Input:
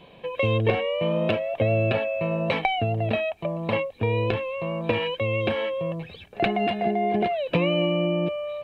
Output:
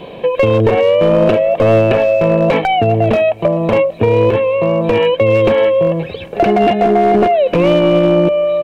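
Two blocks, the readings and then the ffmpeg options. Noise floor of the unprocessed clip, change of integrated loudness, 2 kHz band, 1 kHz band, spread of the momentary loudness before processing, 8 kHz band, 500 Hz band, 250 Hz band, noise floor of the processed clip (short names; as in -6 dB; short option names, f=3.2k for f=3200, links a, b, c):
-49 dBFS, +13.0 dB, +7.5 dB, +12.5 dB, 6 LU, n/a, +14.5 dB, +12.0 dB, -31 dBFS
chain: -filter_complex "[0:a]acrossover=split=3600[a][b];[b]acompressor=threshold=-55dB:ratio=4:attack=1:release=60[c];[a][c]amix=inputs=2:normalize=0,equalizer=f=420:t=o:w=1.9:g=8,asplit=2[d][e];[e]acompressor=threshold=-32dB:ratio=5,volume=0dB[f];[d][f]amix=inputs=2:normalize=0,aeval=exprs='clip(val(0),-1,0.2)':c=same,aecho=1:1:392|784|1176:0.0794|0.031|0.0121,alimiter=level_in=8.5dB:limit=-1dB:release=50:level=0:latency=1,volume=-1dB"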